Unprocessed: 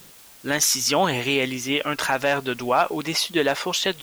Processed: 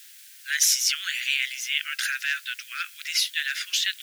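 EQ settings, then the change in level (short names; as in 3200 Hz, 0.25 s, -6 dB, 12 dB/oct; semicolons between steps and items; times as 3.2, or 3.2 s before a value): steep high-pass 1500 Hz 72 dB/oct; 0.0 dB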